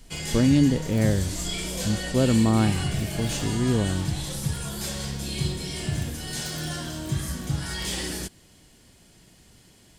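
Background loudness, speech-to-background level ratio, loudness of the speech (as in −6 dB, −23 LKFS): −30.0 LKFS, 5.5 dB, −24.5 LKFS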